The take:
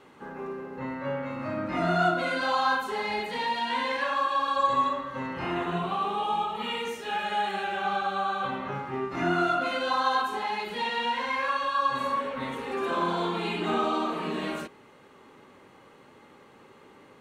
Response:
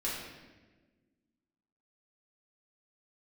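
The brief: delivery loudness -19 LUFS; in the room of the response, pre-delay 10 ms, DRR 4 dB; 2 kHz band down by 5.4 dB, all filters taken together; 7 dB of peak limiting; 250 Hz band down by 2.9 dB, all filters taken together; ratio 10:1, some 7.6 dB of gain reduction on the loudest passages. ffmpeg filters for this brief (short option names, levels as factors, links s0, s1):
-filter_complex "[0:a]equalizer=f=250:t=o:g=-4,equalizer=f=2000:t=o:g=-7.5,acompressor=threshold=0.0355:ratio=10,alimiter=level_in=1.5:limit=0.0631:level=0:latency=1,volume=0.668,asplit=2[s0][s1];[1:a]atrim=start_sample=2205,adelay=10[s2];[s1][s2]afir=irnorm=-1:irlink=0,volume=0.355[s3];[s0][s3]amix=inputs=2:normalize=0,volume=5.96"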